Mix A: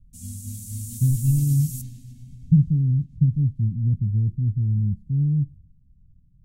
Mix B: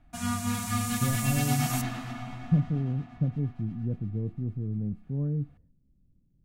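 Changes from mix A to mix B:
speech -12.0 dB; master: remove Chebyshev band-stop 120–8300 Hz, order 2

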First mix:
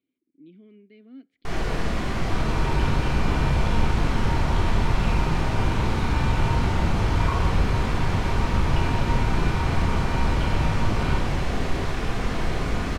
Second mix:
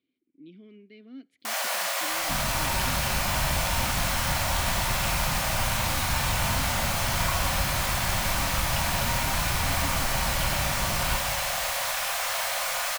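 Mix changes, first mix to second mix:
first sound: add brick-wall FIR high-pass 510 Hz; second sound: send -8.5 dB; master: remove tape spacing loss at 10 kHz 20 dB

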